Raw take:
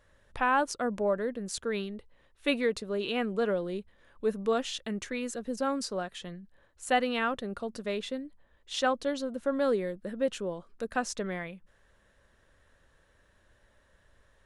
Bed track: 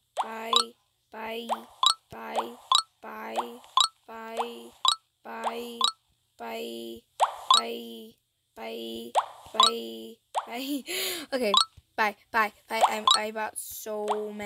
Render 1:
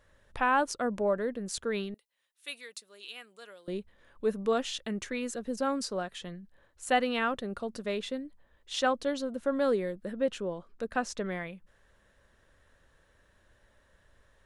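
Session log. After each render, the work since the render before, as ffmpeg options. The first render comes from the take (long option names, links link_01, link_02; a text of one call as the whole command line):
ffmpeg -i in.wav -filter_complex "[0:a]asettb=1/sr,asplit=3[link_01][link_02][link_03];[link_01]atrim=end=1.944[link_04];[link_02]atrim=start=1.94:end=3.68,asetpts=PTS-STARTPTS,afade=type=in:duration=0.004:curve=qsin,afade=type=out:start_time=1.736:duration=0.004:curve=qsin,aderivative[link_05];[link_03]atrim=start=3.676[link_06];[link_04][link_05]acrossfade=duration=0.004:curve1=hsin:curve2=qsin[link_07];[link_07][link_06]acrossfade=duration=0.004:curve1=qsin:curve2=hsin,asettb=1/sr,asplit=3[link_08][link_09][link_10];[link_08]atrim=end=10.124[link_11];[link_09]atrim=start=10.12:end=11.25,asetpts=PTS-STARTPTS,afade=type=in:duration=0.004:curve=qsin,afade=type=out:start_time=1.126:duration=0.004:curve=qsin,highshelf=frequency=6900:gain=-8[link_12];[link_10]atrim=start=11.246[link_13];[link_11][link_12]acrossfade=duration=0.004:curve1=hsin:curve2=qsin[link_14];[link_14][link_13]acrossfade=duration=0.004:curve1=qsin:curve2=hsin" out.wav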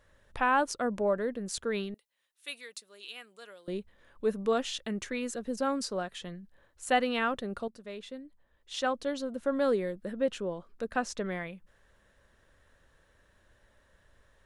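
ffmpeg -i in.wav -filter_complex "[0:a]asplit=2[link_01][link_02];[link_01]atrim=end=7.68,asetpts=PTS-STARTPTS,afade=type=out:start_time=7.676:duration=0.004:curve=hsin:silence=0.251189[link_03];[link_02]atrim=start=7.68,asetpts=PTS-STARTPTS,afade=type=in:duration=1.89:silence=0.251189[link_04];[link_03][link_04]concat=n=2:v=0:a=1" out.wav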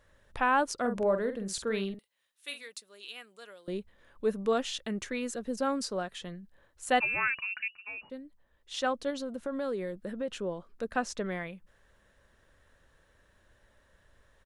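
ffmpeg -i in.wav -filter_complex "[0:a]asplit=3[link_01][link_02][link_03];[link_01]afade=type=out:start_time=0.78:duration=0.02[link_04];[link_02]asplit=2[link_05][link_06];[link_06]adelay=46,volume=-8dB[link_07];[link_05][link_07]amix=inputs=2:normalize=0,afade=type=in:start_time=0.78:duration=0.02,afade=type=out:start_time=2.67:duration=0.02[link_08];[link_03]afade=type=in:start_time=2.67:duration=0.02[link_09];[link_04][link_08][link_09]amix=inputs=3:normalize=0,asettb=1/sr,asplit=3[link_10][link_11][link_12];[link_10]atrim=end=7.004[link_13];[link_11]atrim=start=7:end=8.1,asetpts=PTS-STARTPTS,afade=type=in:duration=0.004:curve=qsin,afade=type=out:start_time=1.096:duration=0.004:curve=qsin,lowpass=frequency=2500:width_type=q:width=0.5098,lowpass=frequency=2500:width_type=q:width=0.6013,lowpass=frequency=2500:width_type=q:width=0.9,lowpass=frequency=2500:width_type=q:width=2.563,afreqshift=-2900[link_14];[link_12]atrim=start=8.096[link_15];[link_13][link_14]acrossfade=duration=0.004:curve1=hsin:curve2=qsin[link_16];[link_16][link_15]acrossfade=duration=0.004:curve1=qsin:curve2=hsin,asettb=1/sr,asplit=3[link_17][link_18][link_19];[link_17]atrim=end=9.104[link_20];[link_18]atrim=start=9.1:end=10.35,asetpts=PTS-STARTPTS,afade=type=in:duration=0.004:curve=qsin,afade=type=out:start_time=1.246:duration=0.004:curve=qsin,acompressor=threshold=-32dB:ratio=2.5:attack=3.2:release=140:knee=1:detection=peak[link_21];[link_19]atrim=start=10.346[link_22];[link_20][link_21]acrossfade=duration=0.004:curve1=hsin:curve2=qsin[link_23];[link_23][link_22]acrossfade=duration=0.004:curve1=qsin:curve2=hsin" out.wav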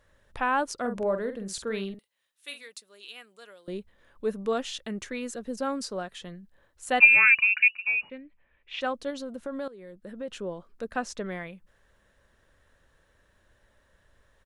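ffmpeg -i in.wav -filter_complex "[0:a]asettb=1/sr,asplit=3[link_01][link_02][link_03];[link_01]atrim=end=6.994[link_04];[link_02]atrim=start=6.99:end=8.81,asetpts=PTS-STARTPTS,afade=type=in:duration=0.004:curve=qsin,afade=type=out:start_time=1.816:duration=0.004:curve=qsin,lowpass=frequency=2400:width_type=q:width=7.3[link_05];[link_03]atrim=start=8.806[link_06];[link_04][link_05]acrossfade=duration=0.004:curve1=hsin:curve2=qsin[link_07];[link_07][link_06]acrossfade=duration=0.004:curve1=qsin:curve2=hsin,asplit=2[link_08][link_09];[link_08]atrim=end=9.68,asetpts=PTS-STARTPTS,afade=type=out:start_time=9.676:duration=0.004:curve=hsin:silence=0.133352[link_10];[link_09]atrim=start=9.68,asetpts=PTS-STARTPTS,afade=type=in:duration=0.7:silence=0.133352[link_11];[link_10][link_11]concat=n=2:v=0:a=1" out.wav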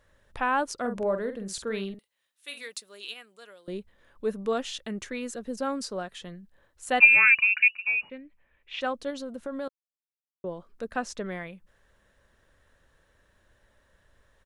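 ffmpeg -i in.wav -filter_complex "[0:a]asettb=1/sr,asplit=3[link_01][link_02][link_03];[link_01]atrim=end=2.574[link_04];[link_02]atrim=start=2.57:end=3.14,asetpts=PTS-STARTPTS,afade=type=in:duration=0.004:curve=qsin,afade=type=out:start_time=0.566:duration=0.004:curve=qsin,acontrast=47[link_05];[link_03]atrim=start=3.136[link_06];[link_04][link_05]acrossfade=duration=0.004:curve1=hsin:curve2=qsin[link_07];[link_07][link_06]acrossfade=duration=0.004:curve1=qsin:curve2=hsin,asplit=3[link_08][link_09][link_10];[link_08]atrim=end=9.69,asetpts=PTS-STARTPTS,afade=type=out:start_time=9.686:duration=0.004:curve=hsin[link_11];[link_09]atrim=start=9.69:end=10.44,asetpts=PTS-STARTPTS,volume=0[link_12];[link_10]atrim=start=10.44,asetpts=PTS-STARTPTS,afade=type=in:duration=0.004:curve=hsin[link_13];[link_11][link_12][link_13]concat=n=3:v=0:a=1" out.wav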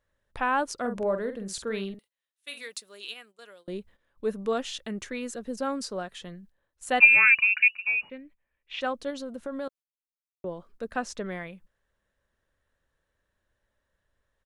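ffmpeg -i in.wav -af "agate=range=-13dB:threshold=-53dB:ratio=16:detection=peak" out.wav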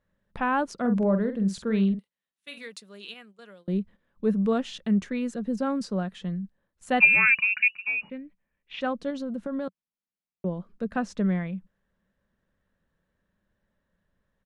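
ffmpeg -i in.wav -af "lowpass=frequency=3300:poles=1,equalizer=frequency=190:width_type=o:width=0.77:gain=14.5" out.wav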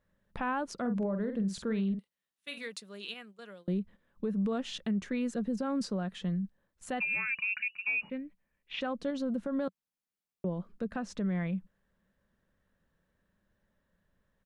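ffmpeg -i in.wav -af "acompressor=threshold=-23dB:ratio=6,alimiter=level_in=0.5dB:limit=-24dB:level=0:latency=1:release=188,volume=-0.5dB" out.wav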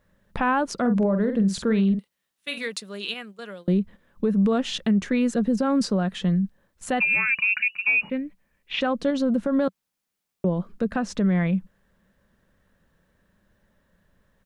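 ffmpeg -i in.wav -af "volume=10.5dB" out.wav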